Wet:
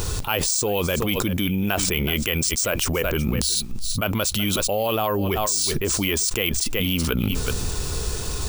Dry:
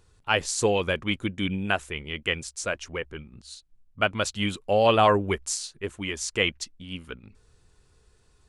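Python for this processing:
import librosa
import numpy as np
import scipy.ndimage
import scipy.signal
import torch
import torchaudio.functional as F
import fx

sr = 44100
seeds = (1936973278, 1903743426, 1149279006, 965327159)

y = fx.peak_eq(x, sr, hz=1800.0, db=-5.5, octaves=0.72)
y = np.repeat(y[::3], 3)[:len(y)]
y = fx.high_shelf(y, sr, hz=4700.0, db=7.0)
y = y + 10.0 ** (-22.0 / 20.0) * np.pad(y, (int(374 * sr / 1000.0), 0))[:len(y)]
y = fx.env_flatten(y, sr, amount_pct=100)
y = y * librosa.db_to_amplitude(-6.0)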